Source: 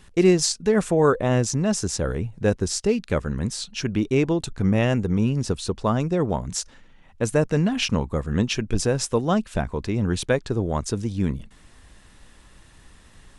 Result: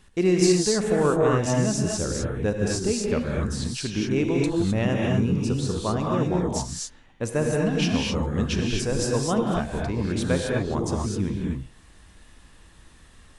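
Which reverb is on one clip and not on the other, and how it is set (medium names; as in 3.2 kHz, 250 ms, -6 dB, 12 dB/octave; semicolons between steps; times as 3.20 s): gated-style reverb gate 280 ms rising, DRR -1.5 dB; trim -5 dB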